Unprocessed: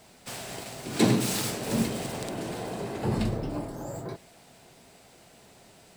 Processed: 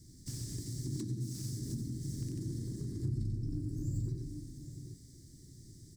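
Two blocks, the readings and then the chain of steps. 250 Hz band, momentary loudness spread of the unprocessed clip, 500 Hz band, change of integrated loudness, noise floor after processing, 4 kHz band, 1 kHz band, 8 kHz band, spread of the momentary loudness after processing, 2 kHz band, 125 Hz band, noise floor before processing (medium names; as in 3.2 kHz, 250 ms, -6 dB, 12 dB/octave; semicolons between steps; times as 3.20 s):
-11.5 dB, 15 LU, -19.5 dB, -9.0 dB, -56 dBFS, -16.0 dB, under -35 dB, -11.5 dB, 17 LU, under -25 dB, -2.0 dB, -55 dBFS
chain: elliptic band-stop 380–5300 Hz, stop band 40 dB; on a send: multi-tap echo 90/790 ms -5/-14 dB; on the sum: compression 16:1, threshold -38 dBFS, peak gain reduction 21 dB; FFT filter 140 Hz 0 dB, 200 Hz -13 dB, 300 Hz -6 dB, 440 Hz -22 dB, 780 Hz -13 dB, 1.7 kHz +15 dB, 2.5 kHz +1 dB, 4.1 kHz -9 dB, 9.2 kHz -13 dB, 15 kHz -18 dB; slew-rate limiter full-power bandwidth 17 Hz; trim +9.5 dB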